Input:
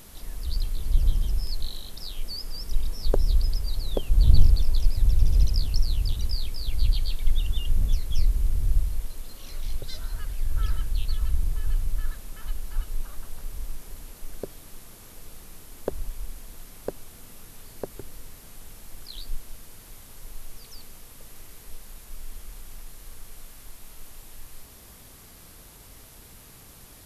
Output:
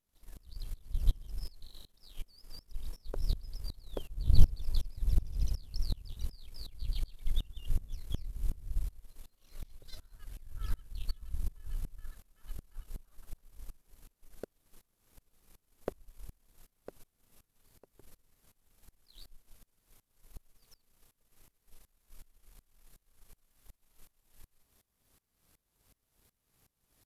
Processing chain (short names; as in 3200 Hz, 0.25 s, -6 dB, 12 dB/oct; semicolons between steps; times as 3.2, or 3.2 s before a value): power-law curve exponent 1.4; dB-ramp tremolo swelling 2.7 Hz, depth 24 dB